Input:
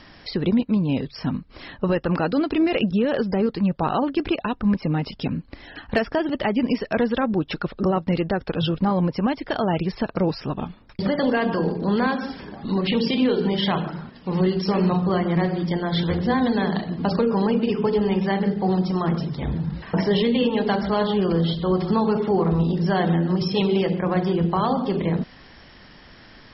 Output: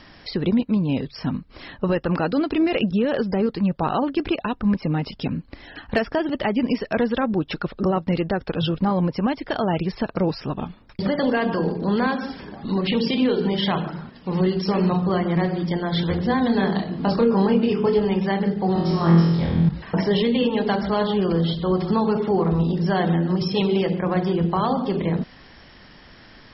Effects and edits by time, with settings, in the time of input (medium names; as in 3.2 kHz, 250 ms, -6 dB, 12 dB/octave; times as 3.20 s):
16.47–18.05 s: doubling 26 ms -5.5 dB
18.73–19.69 s: flutter echo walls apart 4.1 m, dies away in 0.82 s